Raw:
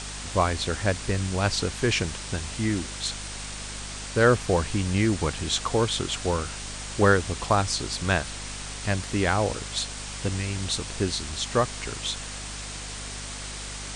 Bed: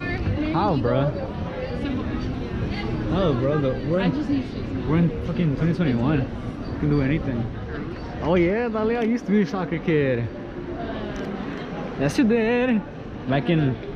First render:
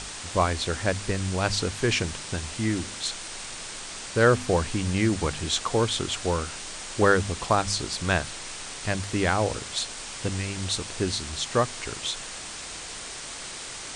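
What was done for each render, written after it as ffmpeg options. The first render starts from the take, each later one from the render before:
-af "bandreject=f=50:t=h:w=4,bandreject=f=100:t=h:w=4,bandreject=f=150:t=h:w=4,bandreject=f=200:t=h:w=4,bandreject=f=250:t=h:w=4"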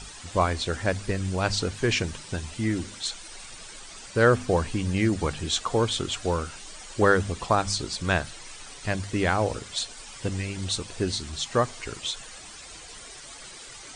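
-af "afftdn=nr=11:nf=-38"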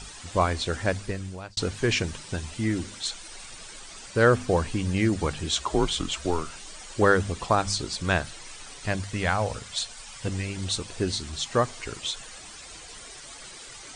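-filter_complex "[0:a]asettb=1/sr,asplit=3[s0][s1][s2];[s0]atrim=end=5.554[s3];[s1]atrim=start=5.55:end=6.5,asetpts=PTS-STARTPTS,afade=t=in:d=0.004:c=qsin,afade=t=out:st=0.946:d=0.004:c=qsin,afreqshift=-84[s4];[s2]atrim=start=6.496[s5];[s3][s4]acrossfade=d=0.004:c1=hsin:c2=qsin[s6];[s6][s5]acrossfade=d=0.004:c1=qsin:c2=hsin,asettb=1/sr,asplit=3[s7][s8][s9];[s7]atrim=end=9.044[s10];[s8]atrim=start=9.04:end=10.27,asetpts=PTS-STARTPTS,afade=t=in:d=0.004:c=qsin,afade=t=out:st=1.226:d=0.004:c=qsin,equalizer=f=340:t=o:w=0.72:g=-11[s11];[s9]atrim=start=10.266[s12];[s10][s11]acrossfade=d=0.004:c1=hsin:c2=qsin[s13];[s13][s12]acrossfade=d=0.004:c1=qsin:c2=hsin,asplit=2[s14][s15];[s14]atrim=end=1.57,asetpts=PTS-STARTPTS,afade=t=out:st=0.89:d=0.68[s16];[s15]atrim=start=1.57,asetpts=PTS-STARTPTS,afade=t=in:d=0.004:c=hsin[s17];[s16][s17]concat=n=2:v=0:a=1"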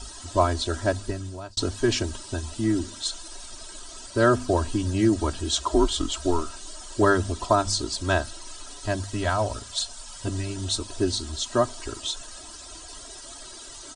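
-af "equalizer=f=2200:t=o:w=0.6:g=-12.5,aecho=1:1:3.1:0.92"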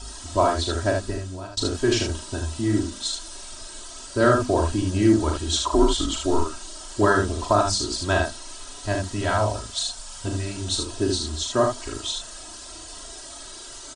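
-af "aecho=1:1:39|75:0.562|0.596"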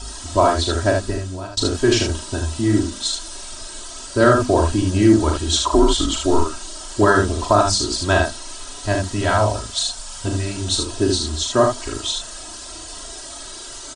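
-af "volume=1.78,alimiter=limit=0.708:level=0:latency=1"

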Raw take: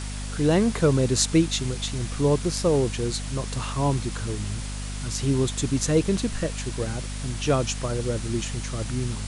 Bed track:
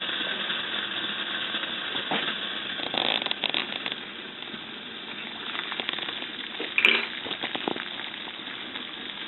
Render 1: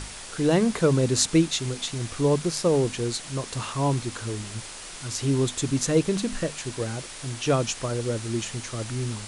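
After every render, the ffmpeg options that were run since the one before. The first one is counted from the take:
-af "bandreject=f=50:t=h:w=6,bandreject=f=100:t=h:w=6,bandreject=f=150:t=h:w=6,bandreject=f=200:t=h:w=6,bandreject=f=250:t=h:w=6"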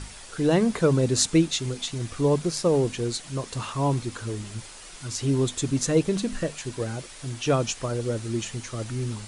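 -af "afftdn=nr=6:nf=-40"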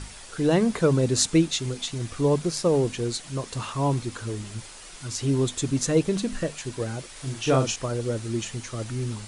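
-filter_complex "[0:a]asettb=1/sr,asplit=3[s0][s1][s2];[s0]atrim=end=7.124[s3];[s1]atrim=start=7.12:end=7.76,asetpts=PTS-STARTPTS,afade=t=in:d=0.004:c=qsin,afade=t=out:st=0.636:d=0.004:c=qsin,asplit=2[s4][s5];[s5]adelay=38,volume=0.596[s6];[s4][s6]amix=inputs=2:normalize=0,atrim=end_sample=28224[s7];[s2]atrim=start=7.756[s8];[s3][s7]acrossfade=d=0.004:c1=hsin:c2=qsin[s9];[s9][s8]acrossfade=d=0.004:c1=qsin:c2=hsin"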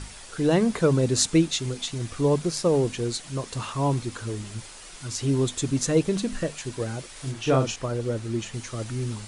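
-filter_complex "[0:a]asettb=1/sr,asplit=3[s0][s1][s2];[s0]atrim=end=7.314[s3];[s1]atrim=start=7.31:end=8.54,asetpts=PTS-STARTPTS,afade=t=in:d=0.004:c=qsin,afade=t=out:st=1.226:d=0.004:c=qsin,highshelf=f=4500:g=-6.5[s4];[s2]atrim=start=8.536[s5];[s3][s4]acrossfade=d=0.004:c1=hsin:c2=qsin[s6];[s6][s5]acrossfade=d=0.004:c1=qsin:c2=hsin"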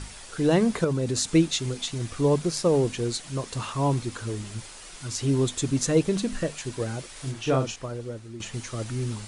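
-filter_complex "[0:a]asettb=1/sr,asplit=3[s0][s1][s2];[s0]atrim=end=0.844[s3];[s1]atrim=start=0.84:end=1.3,asetpts=PTS-STARTPTS,afade=t=in:d=0.004:c=qsin,afade=t=out:st=0.456:d=0.004:c=qsin,acompressor=threshold=0.0708:ratio=3:attack=3.2:release=140:knee=1:detection=peak[s4];[s2]atrim=start=1.296[s5];[s3][s4]acrossfade=d=0.004:c1=hsin:c2=qsin[s6];[s6][s5]acrossfade=d=0.004:c1=qsin:c2=hsin,asplit=2[s7][s8];[s7]atrim=end=8.4,asetpts=PTS-STARTPTS,afade=t=out:st=7.19:d=1.21:silence=0.223872[s9];[s8]atrim=start=8.4,asetpts=PTS-STARTPTS,afade=t=in:d=0.004:c=hsin:silence=0.223872[s10];[s9][s10]concat=n=2:v=0:a=1"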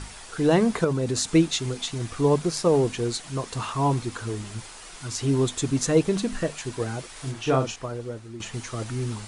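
-af "equalizer=f=910:w=0.63:g=4,bandreject=f=560:w=12"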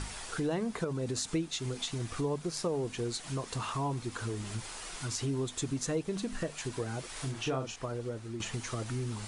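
-af "acompressor=threshold=0.02:ratio=3"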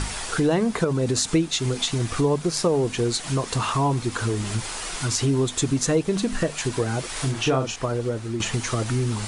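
-af "volume=3.76"

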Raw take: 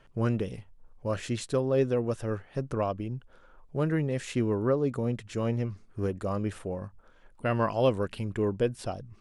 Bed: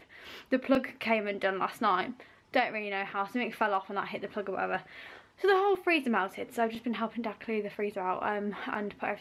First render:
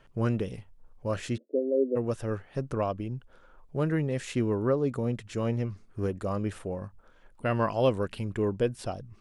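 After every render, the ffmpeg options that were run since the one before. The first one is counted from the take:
-filter_complex "[0:a]asplit=3[s0][s1][s2];[s0]afade=t=out:st=1.36:d=0.02[s3];[s1]asuperpass=centerf=380:order=20:qfactor=0.94,afade=t=in:st=1.36:d=0.02,afade=t=out:st=1.95:d=0.02[s4];[s2]afade=t=in:st=1.95:d=0.02[s5];[s3][s4][s5]amix=inputs=3:normalize=0"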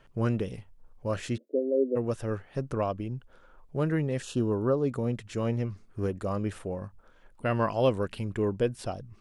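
-filter_complex "[0:a]asettb=1/sr,asplit=3[s0][s1][s2];[s0]atrim=end=4.224[s3];[s1]atrim=start=4.22:end=4.81,asetpts=PTS-STARTPTS,afade=t=in:d=0.004:c=qsin,afade=t=out:st=0.586:d=0.004:c=qsin,asuperstop=centerf=2100:order=4:qfactor=1.7[s4];[s2]atrim=start=4.806[s5];[s3][s4]acrossfade=d=0.004:c1=hsin:c2=qsin[s6];[s6][s5]acrossfade=d=0.004:c1=qsin:c2=hsin"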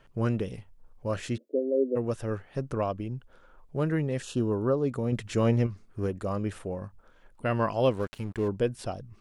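-filter_complex "[0:a]asettb=1/sr,asplit=3[s0][s1][s2];[s0]atrim=end=5.124[s3];[s1]atrim=start=5.12:end=5.67,asetpts=PTS-STARTPTS,afade=t=in:d=0.004:c=qsin,afade=t=out:st=0.546:d=0.004:c=qsin,acontrast=34[s4];[s2]atrim=start=5.666[s5];[s3][s4]acrossfade=d=0.004:c1=hsin:c2=qsin[s6];[s6][s5]acrossfade=d=0.004:c1=qsin:c2=hsin,asplit=3[s7][s8][s9];[s7]afade=t=out:st=7.9:d=0.02[s10];[s8]aeval=exprs='sgn(val(0))*max(abs(val(0))-0.00562,0)':c=same,afade=t=in:st=7.9:d=0.02,afade=t=out:st=8.47:d=0.02[s11];[s9]afade=t=in:st=8.47:d=0.02[s12];[s10][s11][s12]amix=inputs=3:normalize=0"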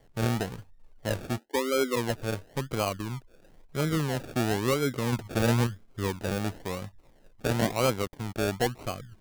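-filter_complex "[0:a]acrossover=split=190|1000|4200[s0][s1][s2][s3];[s1]volume=10.6,asoftclip=hard,volume=0.0944[s4];[s0][s4][s2][s3]amix=inputs=4:normalize=0,acrusher=samples=34:mix=1:aa=0.000001:lfo=1:lforange=20.4:lforate=0.98"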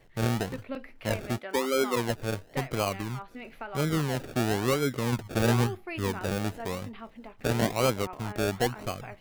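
-filter_complex "[1:a]volume=0.282[s0];[0:a][s0]amix=inputs=2:normalize=0"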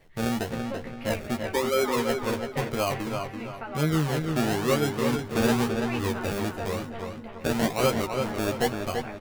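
-filter_complex "[0:a]asplit=2[s0][s1];[s1]adelay=13,volume=0.596[s2];[s0][s2]amix=inputs=2:normalize=0,asplit=2[s3][s4];[s4]adelay=335,lowpass=f=3900:p=1,volume=0.562,asplit=2[s5][s6];[s6]adelay=335,lowpass=f=3900:p=1,volume=0.39,asplit=2[s7][s8];[s8]adelay=335,lowpass=f=3900:p=1,volume=0.39,asplit=2[s9][s10];[s10]adelay=335,lowpass=f=3900:p=1,volume=0.39,asplit=2[s11][s12];[s12]adelay=335,lowpass=f=3900:p=1,volume=0.39[s13];[s5][s7][s9][s11][s13]amix=inputs=5:normalize=0[s14];[s3][s14]amix=inputs=2:normalize=0"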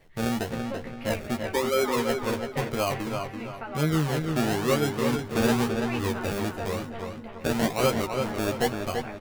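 -af anull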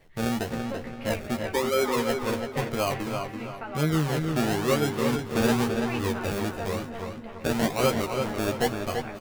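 -af "aecho=1:1:279:0.15"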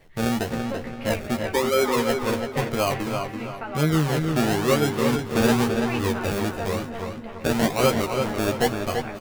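-af "volume=1.5"

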